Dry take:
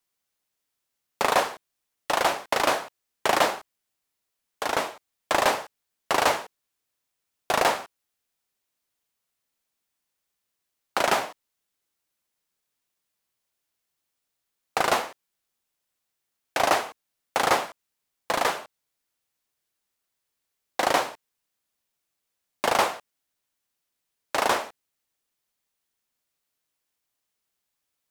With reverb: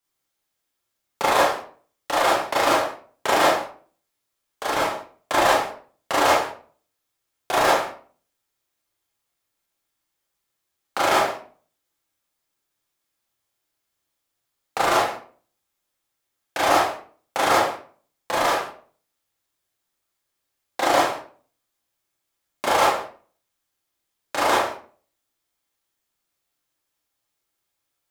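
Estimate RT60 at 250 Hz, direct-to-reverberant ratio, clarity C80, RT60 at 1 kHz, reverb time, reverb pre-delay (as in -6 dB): 0.55 s, -5.5 dB, 8.5 dB, 0.40 s, 0.45 s, 26 ms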